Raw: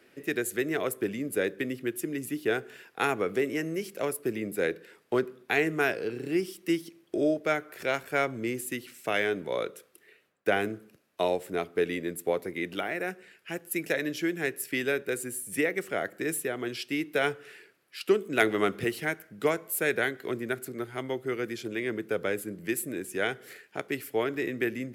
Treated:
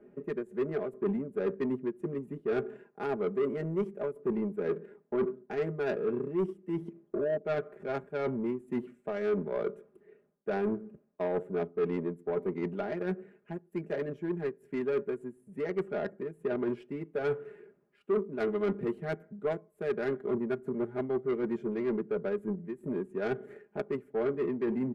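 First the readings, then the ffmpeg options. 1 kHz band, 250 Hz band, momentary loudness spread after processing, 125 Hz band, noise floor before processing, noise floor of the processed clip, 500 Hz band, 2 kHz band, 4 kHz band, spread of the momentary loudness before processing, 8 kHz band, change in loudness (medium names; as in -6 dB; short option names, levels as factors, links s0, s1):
-7.0 dB, -1.5 dB, 7 LU, +0.5 dB, -63 dBFS, -68 dBFS, -1.5 dB, -13.5 dB, under -15 dB, 7 LU, under -30 dB, -3.5 dB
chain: -af "aemphasis=mode=reproduction:type=cd,aexciter=amount=10.4:drive=5.8:freq=7000,areverse,acompressor=threshold=0.02:ratio=6,areverse,aecho=1:1:4.9:0.88,adynamicsmooth=sensitivity=1:basefreq=570,asoftclip=type=tanh:threshold=0.0376,volume=2.11"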